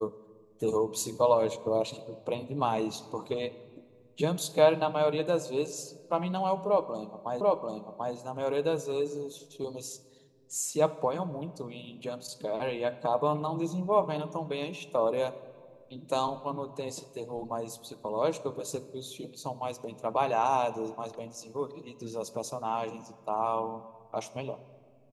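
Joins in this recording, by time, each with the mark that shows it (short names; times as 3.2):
7.41 repeat of the last 0.74 s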